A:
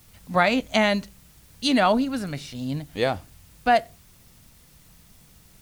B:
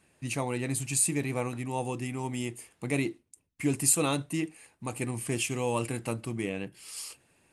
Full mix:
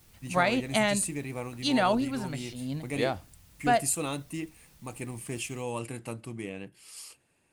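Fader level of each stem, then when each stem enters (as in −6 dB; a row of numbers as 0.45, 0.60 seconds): −5.5, −5.0 decibels; 0.00, 0.00 seconds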